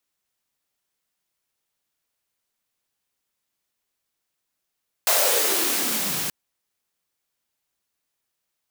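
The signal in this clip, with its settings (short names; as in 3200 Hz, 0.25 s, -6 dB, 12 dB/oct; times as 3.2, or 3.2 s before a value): swept filtered noise white, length 1.23 s highpass, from 670 Hz, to 140 Hz, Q 4.6, exponential, gain ramp -8 dB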